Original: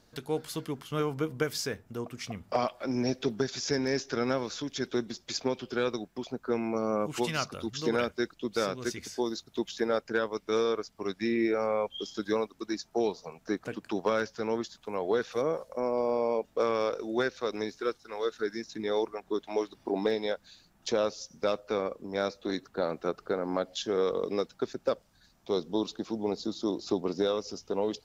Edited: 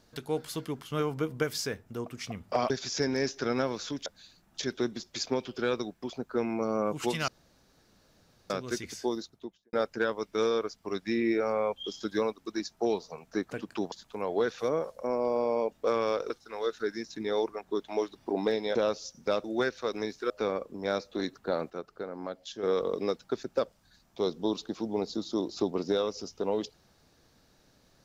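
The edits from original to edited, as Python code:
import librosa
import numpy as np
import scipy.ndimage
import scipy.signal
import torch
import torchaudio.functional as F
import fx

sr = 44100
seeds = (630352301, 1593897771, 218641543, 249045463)

y = fx.studio_fade_out(x, sr, start_s=9.17, length_s=0.7)
y = fx.edit(y, sr, fx.cut(start_s=2.7, length_s=0.71),
    fx.room_tone_fill(start_s=7.42, length_s=1.22),
    fx.cut(start_s=14.06, length_s=0.59),
    fx.move(start_s=17.03, length_s=0.86, to_s=21.6),
    fx.move(start_s=20.34, length_s=0.57, to_s=4.77),
    fx.clip_gain(start_s=23.0, length_s=0.93, db=-7.5), tone=tone)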